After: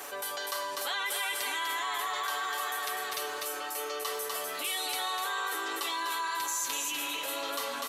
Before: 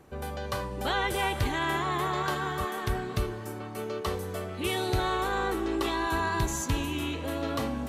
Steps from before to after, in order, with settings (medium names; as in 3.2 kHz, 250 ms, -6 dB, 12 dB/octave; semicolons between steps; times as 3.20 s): high-pass 550 Hz 12 dB/octave; tilt EQ +3 dB/octave; comb 7 ms, depth 74%; on a send: delay 248 ms -6 dB; on the sum: level flattener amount 70%; trim -9 dB